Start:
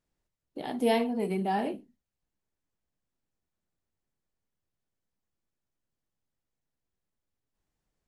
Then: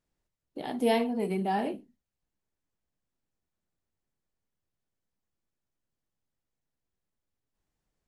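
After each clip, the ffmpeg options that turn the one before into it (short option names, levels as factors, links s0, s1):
-af anull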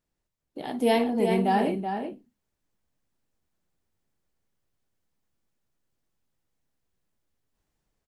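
-filter_complex "[0:a]asplit=2[s0][s1];[s1]adelay=379,volume=0.447,highshelf=f=4000:g=-8.53[s2];[s0][s2]amix=inputs=2:normalize=0,dynaudnorm=f=270:g=7:m=1.88"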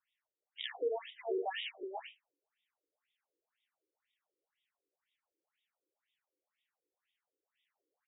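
-filter_complex "[0:a]equalizer=f=4100:w=1:g=15,acrossover=split=290|3000[s0][s1][s2];[s1]acompressor=threshold=0.0178:ratio=10[s3];[s0][s3][s2]amix=inputs=3:normalize=0,afftfilt=real='re*between(b*sr/1024,370*pow(2700/370,0.5+0.5*sin(2*PI*2*pts/sr))/1.41,370*pow(2700/370,0.5+0.5*sin(2*PI*2*pts/sr))*1.41)':imag='im*between(b*sr/1024,370*pow(2700/370,0.5+0.5*sin(2*PI*2*pts/sr))/1.41,370*pow(2700/370,0.5+0.5*sin(2*PI*2*pts/sr))*1.41)':win_size=1024:overlap=0.75,volume=1.12"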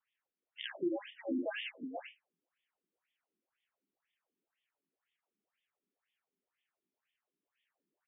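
-af "highpass=f=230:t=q:w=0.5412,highpass=f=230:t=q:w=1.307,lowpass=f=3400:t=q:w=0.5176,lowpass=f=3400:t=q:w=0.7071,lowpass=f=3400:t=q:w=1.932,afreqshift=-120"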